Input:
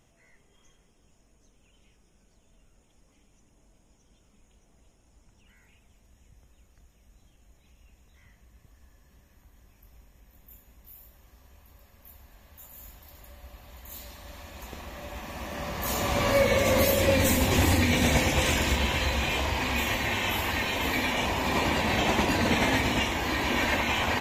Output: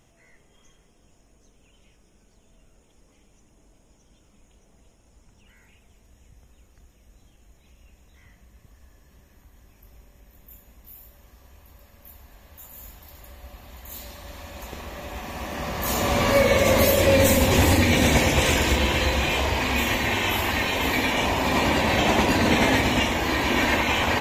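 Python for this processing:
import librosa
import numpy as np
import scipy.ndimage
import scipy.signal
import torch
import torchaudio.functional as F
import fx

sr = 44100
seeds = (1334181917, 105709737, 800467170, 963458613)

y = fx.echo_banded(x, sr, ms=64, feedback_pct=84, hz=420.0, wet_db=-7.5)
y = y * librosa.db_to_amplitude(4.0)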